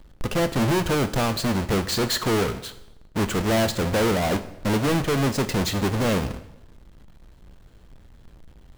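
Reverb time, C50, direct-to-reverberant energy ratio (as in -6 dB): 0.85 s, 14.0 dB, 10.5 dB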